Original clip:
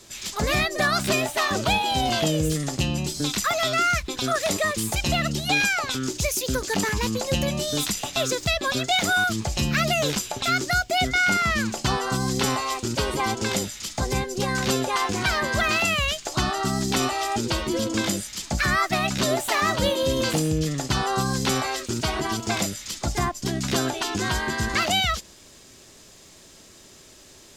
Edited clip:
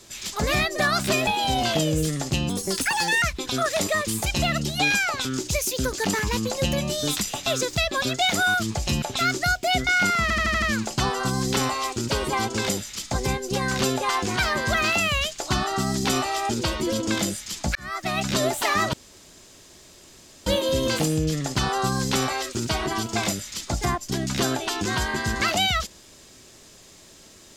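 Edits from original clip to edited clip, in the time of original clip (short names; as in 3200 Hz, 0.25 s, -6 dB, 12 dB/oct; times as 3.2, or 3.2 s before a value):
1.27–1.74 cut
2.96–3.92 speed 131%
9.72–10.29 cut
11.49 stutter 0.08 s, 6 plays
18.62–19.12 fade in
19.8 insert room tone 1.53 s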